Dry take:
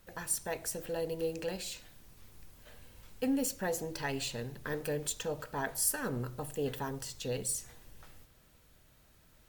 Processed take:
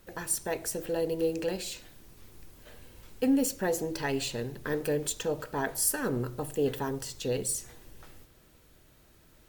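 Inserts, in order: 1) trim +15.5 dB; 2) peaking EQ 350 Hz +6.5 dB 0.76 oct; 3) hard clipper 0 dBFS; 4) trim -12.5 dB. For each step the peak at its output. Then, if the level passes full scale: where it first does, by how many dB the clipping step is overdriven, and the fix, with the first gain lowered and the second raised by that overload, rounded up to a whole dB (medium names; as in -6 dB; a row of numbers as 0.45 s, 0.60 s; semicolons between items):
-2.0 dBFS, -2.0 dBFS, -2.0 dBFS, -14.5 dBFS; nothing clips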